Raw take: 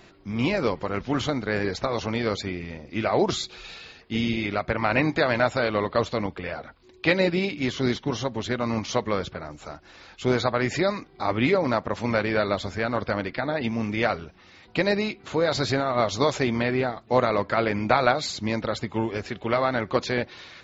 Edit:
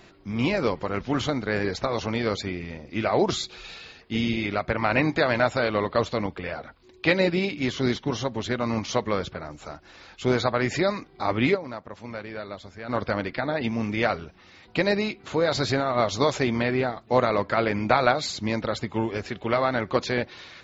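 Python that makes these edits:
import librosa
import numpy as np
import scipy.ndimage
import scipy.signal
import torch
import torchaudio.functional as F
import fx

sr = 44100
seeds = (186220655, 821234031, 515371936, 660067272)

y = fx.edit(x, sr, fx.fade_down_up(start_s=11.54, length_s=1.36, db=-12.0, fade_s=0.16, curve='exp'), tone=tone)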